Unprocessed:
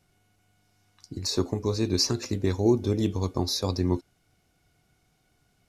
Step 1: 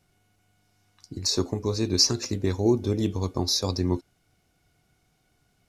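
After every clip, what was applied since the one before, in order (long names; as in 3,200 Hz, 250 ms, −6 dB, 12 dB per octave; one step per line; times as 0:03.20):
dynamic equaliser 5,700 Hz, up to +6 dB, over −41 dBFS, Q 1.5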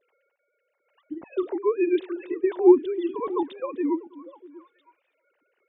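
three sine waves on the formant tracks
sample-and-hold tremolo 3.5 Hz
echo through a band-pass that steps 321 ms, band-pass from 190 Hz, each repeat 1.4 octaves, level −12 dB
level +5 dB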